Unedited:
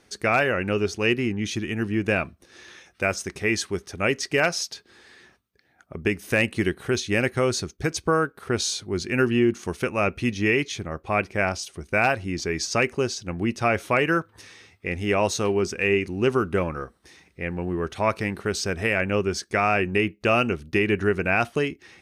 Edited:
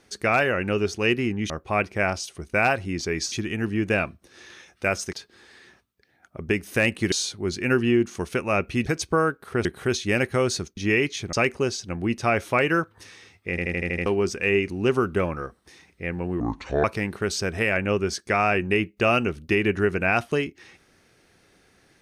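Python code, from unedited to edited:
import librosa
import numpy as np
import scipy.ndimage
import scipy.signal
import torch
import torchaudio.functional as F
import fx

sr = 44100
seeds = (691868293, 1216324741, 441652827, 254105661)

y = fx.edit(x, sr, fx.cut(start_s=3.31, length_s=1.38),
    fx.swap(start_s=6.68, length_s=1.12, other_s=8.6, other_length_s=1.73),
    fx.move(start_s=10.89, length_s=1.82, to_s=1.5),
    fx.stutter_over(start_s=14.88, slice_s=0.08, count=7),
    fx.speed_span(start_s=17.78, length_s=0.3, speed=0.68), tone=tone)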